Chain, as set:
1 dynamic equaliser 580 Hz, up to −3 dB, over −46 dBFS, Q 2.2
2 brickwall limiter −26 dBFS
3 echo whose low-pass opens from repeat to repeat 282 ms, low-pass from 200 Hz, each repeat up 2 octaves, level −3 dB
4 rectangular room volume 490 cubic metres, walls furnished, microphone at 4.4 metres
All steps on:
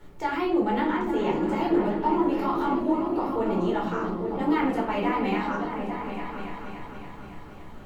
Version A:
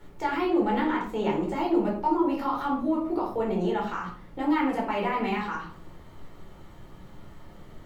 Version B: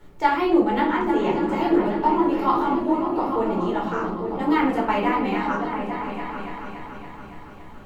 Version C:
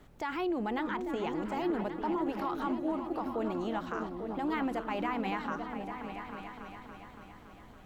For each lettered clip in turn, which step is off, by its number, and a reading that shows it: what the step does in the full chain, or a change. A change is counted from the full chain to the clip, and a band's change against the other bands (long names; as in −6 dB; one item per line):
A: 3, echo-to-direct ratio 5.0 dB to 3.5 dB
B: 2, 125 Hz band −2.5 dB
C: 4, change in momentary loudness spread −1 LU